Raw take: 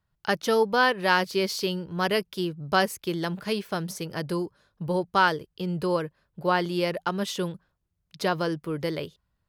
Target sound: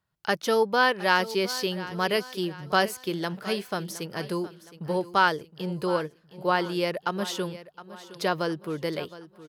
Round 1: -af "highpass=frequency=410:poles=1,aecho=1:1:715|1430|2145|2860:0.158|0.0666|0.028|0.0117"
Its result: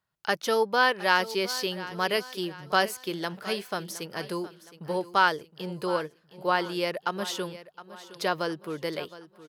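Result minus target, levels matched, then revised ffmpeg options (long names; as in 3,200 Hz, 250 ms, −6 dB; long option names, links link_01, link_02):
125 Hz band −4.0 dB
-af "highpass=frequency=170:poles=1,aecho=1:1:715|1430|2145|2860:0.158|0.0666|0.028|0.0117"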